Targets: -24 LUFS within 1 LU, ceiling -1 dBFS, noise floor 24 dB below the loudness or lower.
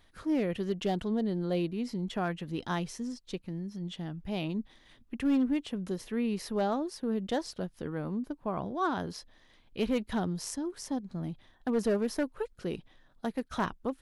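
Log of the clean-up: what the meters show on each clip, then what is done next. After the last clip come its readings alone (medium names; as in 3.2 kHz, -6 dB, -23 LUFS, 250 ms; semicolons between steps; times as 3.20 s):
clipped samples 0.5%; clipping level -22.0 dBFS; loudness -33.5 LUFS; peak level -22.0 dBFS; loudness target -24.0 LUFS
-> clip repair -22 dBFS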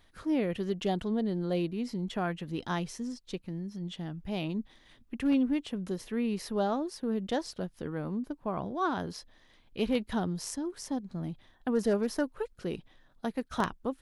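clipped samples 0.0%; loudness -33.5 LUFS; peak level -13.0 dBFS; loudness target -24.0 LUFS
-> trim +9.5 dB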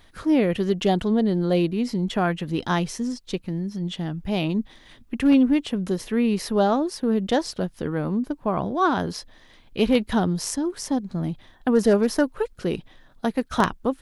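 loudness -24.0 LUFS; peak level -3.5 dBFS; noise floor -53 dBFS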